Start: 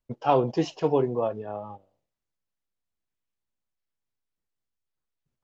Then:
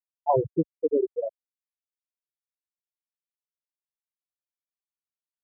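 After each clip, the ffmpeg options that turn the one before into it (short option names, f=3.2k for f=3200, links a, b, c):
-af "afftfilt=real='re*gte(hypot(re,im),0.398)':imag='im*gte(hypot(re,im),0.398)':win_size=1024:overlap=0.75,equalizer=f=68:w=0.55:g=7.5"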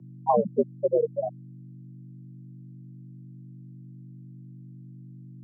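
-af "aeval=exprs='val(0)+0.00398*(sin(2*PI*50*n/s)+sin(2*PI*2*50*n/s)/2+sin(2*PI*3*50*n/s)/3+sin(2*PI*4*50*n/s)/4+sin(2*PI*5*50*n/s)/5)':c=same,afreqshift=79,lowshelf=f=100:t=q:w=3:g=-12.5"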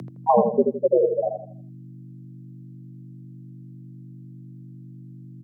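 -filter_complex "[0:a]acompressor=mode=upward:threshold=-35dB:ratio=2.5,asplit=2[a][b];[b]adelay=81,lowpass=f=1k:p=1,volume=-4dB,asplit=2[c][d];[d]adelay=81,lowpass=f=1k:p=1,volume=0.4,asplit=2[e][f];[f]adelay=81,lowpass=f=1k:p=1,volume=0.4,asplit=2[g][h];[h]adelay=81,lowpass=f=1k:p=1,volume=0.4,asplit=2[i][j];[j]adelay=81,lowpass=f=1k:p=1,volume=0.4[k];[c][e][g][i][k]amix=inputs=5:normalize=0[l];[a][l]amix=inputs=2:normalize=0,volume=4dB"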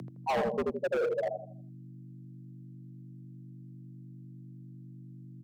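-af "asoftclip=type=hard:threshold=-20.5dB,volume=-6dB"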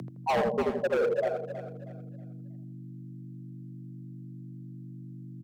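-af "aecho=1:1:319|638|957|1276:0.282|0.093|0.0307|0.0101,volume=3dB"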